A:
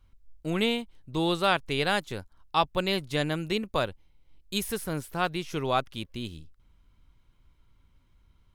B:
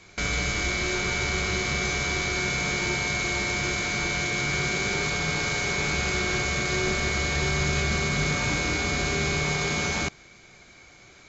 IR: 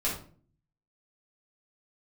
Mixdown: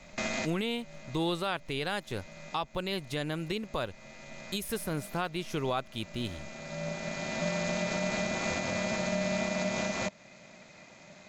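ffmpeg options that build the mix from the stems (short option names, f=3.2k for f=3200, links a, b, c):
-filter_complex "[0:a]volume=1dB,asplit=2[a][b];[1:a]highpass=f=410:t=q:w=4.9,aeval=exprs='val(0)*sin(2*PI*210*n/s)':c=same,volume=-1dB[c];[b]apad=whole_len=497455[d];[c][d]sidechaincompress=threshold=-43dB:ratio=8:attack=5.1:release=1250[e];[a][e]amix=inputs=2:normalize=0,alimiter=limit=-20.5dB:level=0:latency=1:release=256"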